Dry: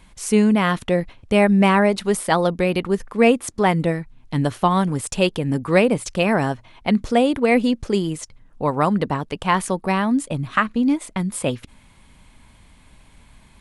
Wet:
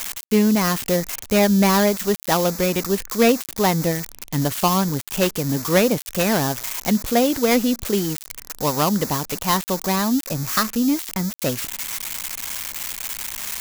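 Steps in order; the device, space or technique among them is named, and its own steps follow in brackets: budget class-D amplifier (dead-time distortion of 0.15 ms; zero-crossing glitches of -9 dBFS); trim -1 dB

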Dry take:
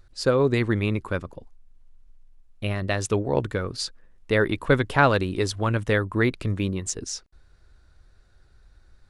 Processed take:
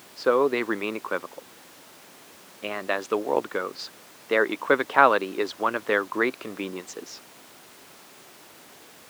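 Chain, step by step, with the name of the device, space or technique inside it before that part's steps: horn gramophone (band-pass 260–3500 Hz; peaking EQ 1.1 kHz +5 dB; wow and flutter; pink noise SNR 20 dB); high-pass 250 Hz 12 dB/octave

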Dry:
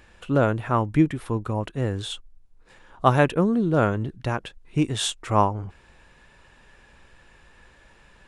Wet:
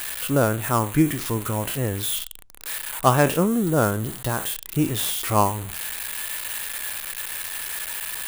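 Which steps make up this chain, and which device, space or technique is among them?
spectral sustain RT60 0.30 s; budget class-D amplifier (dead-time distortion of 0.096 ms; zero-crossing glitches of -14.5 dBFS); 3.46–4.87 s: peaking EQ 2.4 kHz -6 dB 0.44 oct

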